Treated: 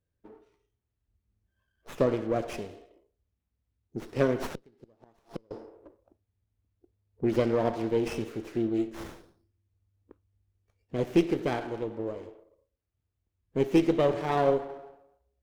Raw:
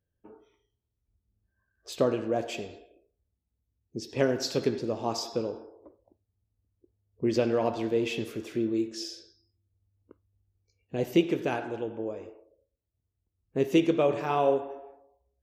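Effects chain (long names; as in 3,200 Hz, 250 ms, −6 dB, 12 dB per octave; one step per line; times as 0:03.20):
0:04.52–0:05.51: gate with flip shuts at −22 dBFS, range −33 dB
windowed peak hold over 9 samples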